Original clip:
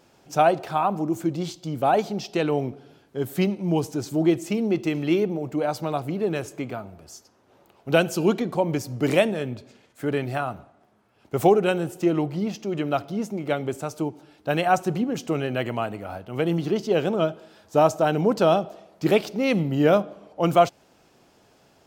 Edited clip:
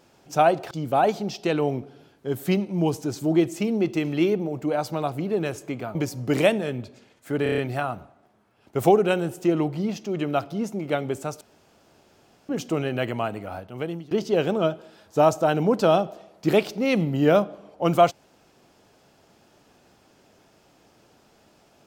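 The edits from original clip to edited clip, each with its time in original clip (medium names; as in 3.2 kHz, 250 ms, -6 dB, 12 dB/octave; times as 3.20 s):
0.71–1.61 s: delete
6.85–8.68 s: delete
10.16 s: stutter 0.03 s, 6 plays
13.99–15.07 s: room tone
16.13–16.69 s: fade out, to -22 dB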